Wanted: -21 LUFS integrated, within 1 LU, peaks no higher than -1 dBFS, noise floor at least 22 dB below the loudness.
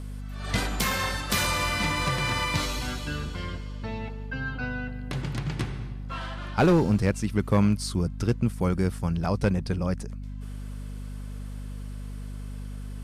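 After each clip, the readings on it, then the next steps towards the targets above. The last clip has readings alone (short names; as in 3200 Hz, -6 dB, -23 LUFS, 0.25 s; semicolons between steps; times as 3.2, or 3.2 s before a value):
clipped 0.4%; flat tops at -14.5 dBFS; hum 50 Hz; harmonics up to 250 Hz; hum level -34 dBFS; loudness -27.5 LUFS; peak -14.5 dBFS; loudness target -21.0 LUFS
-> clip repair -14.5 dBFS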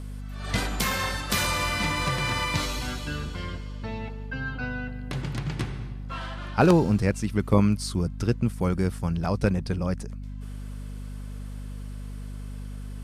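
clipped 0.0%; hum 50 Hz; harmonics up to 250 Hz; hum level -33 dBFS
-> de-hum 50 Hz, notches 5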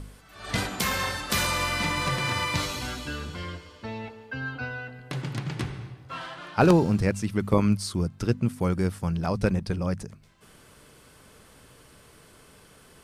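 hum none; loudness -27.5 LUFS; peak -5.0 dBFS; loudness target -21.0 LUFS
-> gain +6.5 dB; limiter -1 dBFS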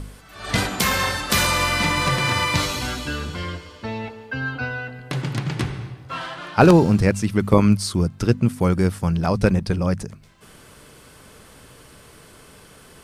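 loudness -21.0 LUFS; peak -1.0 dBFS; noise floor -48 dBFS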